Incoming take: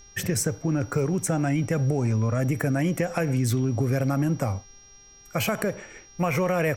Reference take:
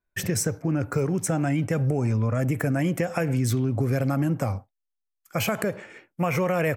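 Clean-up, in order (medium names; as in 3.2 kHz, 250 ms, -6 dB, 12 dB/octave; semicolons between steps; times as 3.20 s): clip repair -14 dBFS; de-hum 398.6 Hz, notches 16; band-stop 5.7 kHz, Q 30; expander -42 dBFS, range -21 dB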